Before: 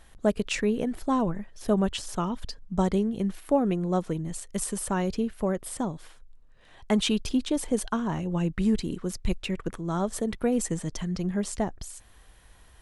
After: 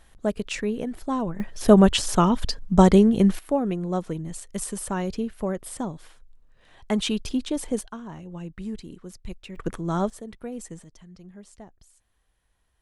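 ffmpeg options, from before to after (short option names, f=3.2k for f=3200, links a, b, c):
-af "asetnsamples=n=441:p=0,asendcmd='1.4 volume volume 10dB;3.39 volume volume -0.5dB;7.81 volume volume -9.5dB;9.56 volume volume 3dB;10.1 volume volume -10dB;10.84 volume volume -17dB',volume=-1.5dB"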